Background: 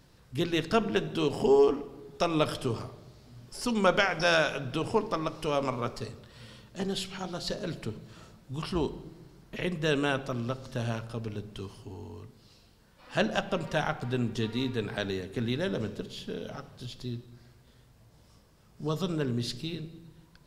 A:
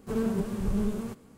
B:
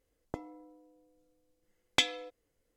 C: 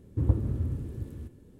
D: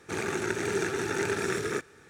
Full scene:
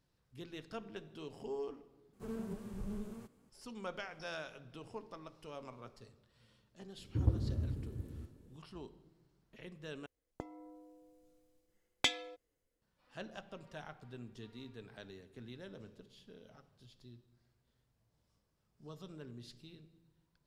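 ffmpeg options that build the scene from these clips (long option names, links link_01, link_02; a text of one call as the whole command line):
ffmpeg -i bed.wav -i cue0.wav -i cue1.wav -i cue2.wav -filter_complex "[0:a]volume=-19.5dB[link_01];[2:a]dynaudnorm=framelen=210:gausssize=5:maxgain=13.5dB[link_02];[link_01]asplit=3[link_03][link_04][link_05];[link_03]atrim=end=2.134[link_06];[1:a]atrim=end=1.37,asetpts=PTS-STARTPTS,volume=-14dB[link_07];[link_04]atrim=start=3.496:end=10.064[link_08];[link_02]atrim=end=2.76,asetpts=PTS-STARTPTS,volume=-10.5dB[link_09];[link_05]atrim=start=12.816[link_10];[3:a]atrim=end=1.59,asetpts=PTS-STARTPTS,volume=-6.5dB,afade=type=in:duration=0.004:curve=hsin,afade=type=out:start_time=1.586:duration=0.004:curve=hsin,adelay=307818S[link_11];[link_06][link_07]acrossfade=duration=0.004:curve1=hsin:curve2=hsin[link_12];[link_12][link_08]acrossfade=duration=0.004:curve1=hsin:curve2=hsin[link_13];[link_13][link_09]acrossfade=duration=0.004:curve1=hsin:curve2=hsin[link_14];[link_14][link_10]acrossfade=duration=0.004:curve1=hsin:curve2=hsin[link_15];[link_15][link_11]amix=inputs=2:normalize=0" out.wav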